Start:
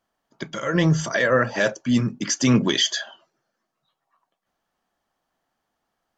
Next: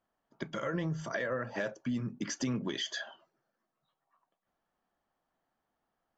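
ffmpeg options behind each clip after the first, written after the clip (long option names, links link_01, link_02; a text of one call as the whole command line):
ffmpeg -i in.wav -af "highshelf=frequency=3400:gain=-11.5,acompressor=threshold=-27dB:ratio=6,volume=-4.5dB" out.wav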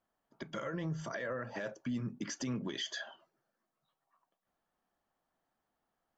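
ffmpeg -i in.wav -af "alimiter=level_in=3.5dB:limit=-24dB:level=0:latency=1:release=112,volume=-3.5dB,volume=-1.5dB" out.wav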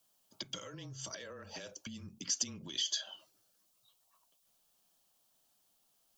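ffmpeg -i in.wav -af "acompressor=threshold=-47dB:ratio=4,aexciter=amount=5.6:drive=6.5:freq=2700,afreqshift=-24" out.wav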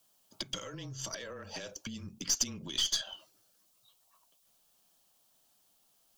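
ffmpeg -i in.wav -af "aeval=exprs='0.106*(cos(1*acos(clip(val(0)/0.106,-1,1)))-cos(1*PI/2))+0.00531*(cos(8*acos(clip(val(0)/0.106,-1,1)))-cos(8*PI/2))':channel_layout=same,volume=4dB" out.wav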